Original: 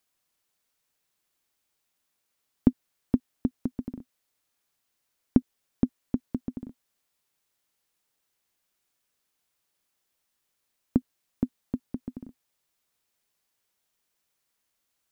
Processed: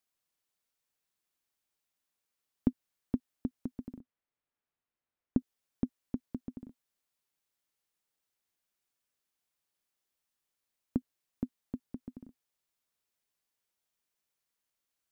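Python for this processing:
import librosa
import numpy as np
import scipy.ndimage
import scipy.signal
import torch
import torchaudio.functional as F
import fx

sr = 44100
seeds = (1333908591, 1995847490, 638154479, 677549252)

y = fx.air_absorb(x, sr, metres=410.0, at=(3.99, 5.38), fade=0.02)
y = F.gain(torch.from_numpy(y), -8.0).numpy()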